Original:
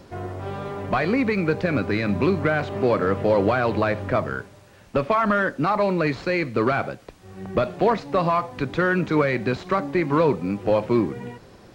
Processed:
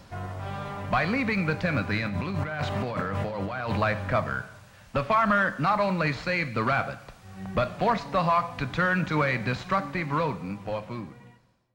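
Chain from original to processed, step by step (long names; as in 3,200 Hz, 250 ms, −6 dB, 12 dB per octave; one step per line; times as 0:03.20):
fade-out on the ending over 2.09 s
parametric band 370 Hz −13.5 dB 0.95 octaves
0:01.98–0:03.77: compressor whose output falls as the input rises −30 dBFS, ratio −1
coupled-rooms reverb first 0.91 s, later 2.3 s, from −18 dB, DRR 13 dB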